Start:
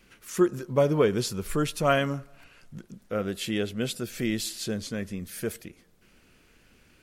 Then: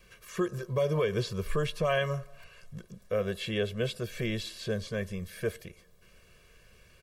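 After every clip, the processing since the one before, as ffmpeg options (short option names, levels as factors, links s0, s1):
-filter_complex "[0:a]acrossover=split=3900[s0][s1];[s1]acompressor=threshold=0.00282:ratio=4:attack=1:release=60[s2];[s0][s2]amix=inputs=2:normalize=0,aecho=1:1:1.8:0.92,acrossover=split=2400[s3][s4];[s3]alimiter=limit=0.133:level=0:latency=1:release=141[s5];[s5][s4]amix=inputs=2:normalize=0,volume=0.794"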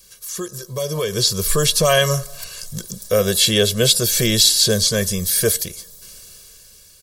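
-af "dynaudnorm=f=300:g=9:m=4.47,aexciter=amount=6.4:drive=7.3:freq=3700"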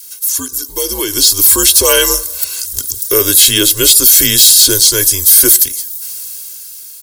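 -af "aemphasis=mode=production:type=bsi,afreqshift=-94,apsyclip=1.88,volume=0.841"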